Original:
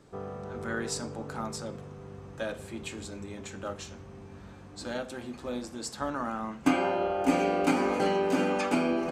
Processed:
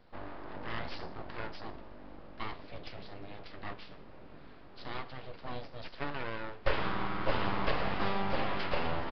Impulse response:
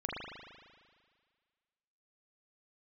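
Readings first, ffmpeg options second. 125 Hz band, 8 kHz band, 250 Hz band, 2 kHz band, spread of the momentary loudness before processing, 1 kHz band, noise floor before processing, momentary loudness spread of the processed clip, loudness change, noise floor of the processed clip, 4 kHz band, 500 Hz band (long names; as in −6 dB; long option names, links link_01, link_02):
−1.5 dB, below −30 dB, −12.0 dB, −2.5 dB, 18 LU, −4.5 dB, −48 dBFS, 19 LU, −7.0 dB, −50 dBFS, −1.5 dB, −8.5 dB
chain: -af "aeval=exprs='abs(val(0))':channel_layout=same,aresample=11025,aresample=44100,volume=-2.5dB"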